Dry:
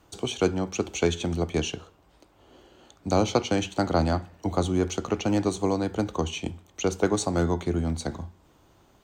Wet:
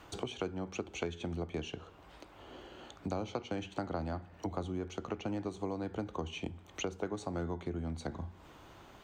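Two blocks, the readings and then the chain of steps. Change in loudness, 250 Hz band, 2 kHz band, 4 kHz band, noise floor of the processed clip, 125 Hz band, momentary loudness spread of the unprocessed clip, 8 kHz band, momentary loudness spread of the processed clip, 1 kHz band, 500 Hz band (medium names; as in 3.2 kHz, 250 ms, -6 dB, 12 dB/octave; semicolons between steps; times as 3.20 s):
-12.5 dB, -12.5 dB, -11.0 dB, -12.5 dB, -57 dBFS, -12.0 dB, 9 LU, -16.0 dB, 14 LU, -12.0 dB, -12.5 dB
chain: tone controls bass 0 dB, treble -11 dB; compression 4:1, threshold -39 dBFS, peak gain reduction 18.5 dB; tape noise reduction on one side only encoder only; trim +2 dB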